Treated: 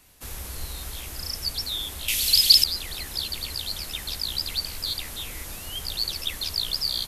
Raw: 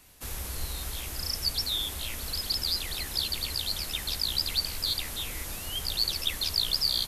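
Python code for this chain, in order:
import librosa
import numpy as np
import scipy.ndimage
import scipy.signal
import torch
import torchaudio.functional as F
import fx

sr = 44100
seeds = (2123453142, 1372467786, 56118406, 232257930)

y = fx.high_shelf_res(x, sr, hz=2000.0, db=13.5, q=1.5, at=(2.08, 2.64))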